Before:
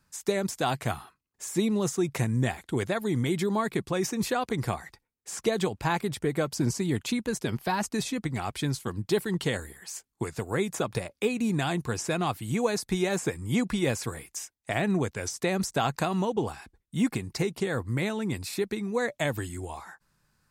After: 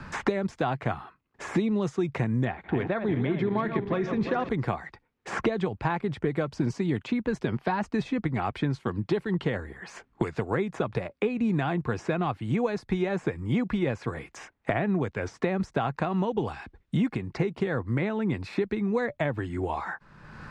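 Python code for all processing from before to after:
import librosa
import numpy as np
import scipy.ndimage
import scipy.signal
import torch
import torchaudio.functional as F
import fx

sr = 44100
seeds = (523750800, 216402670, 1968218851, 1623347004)

y = fx.chain(x, sr, fx.reverse_delay_fb(ms=175, feedback_pct=68, wet_db=-9.0),
    fx.lowpass(hz=3800.0, slope=12), at=(2.45, 4.49))
y = scipy.signal.sosfilt(scipy.signal.butter(2, 2300.0, 'lowpass', fs=sr, output='sos'), y)
y = fx.band_squash(y, sr, depth_pct=100)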